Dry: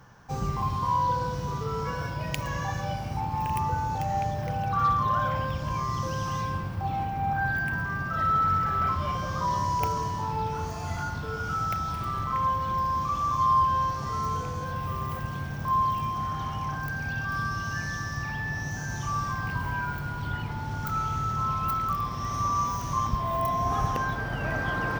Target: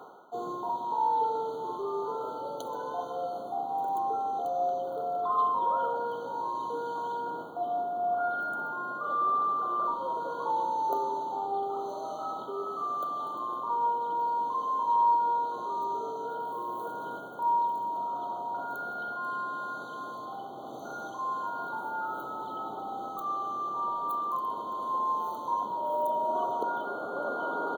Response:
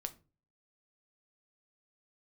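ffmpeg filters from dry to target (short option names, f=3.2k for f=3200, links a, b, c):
-af "highpass=f=370:w=0.5412,highpass=f=370:w=1.3066,tiltshelf=f=1.1k:g=6.5,areverse,acompressor=mode=upward:threshold=-29dB:ratio=2.5,areverse,asetrate=39690,aresample=44100,afftfilt=real='re*eq(mod(floor(b*sr/1024/1500),2),0)':imag='im*eq(mod(floor(b*sr/1024/1500),2),0)':win_size=1024:overlap=0.75,volume=-2dB"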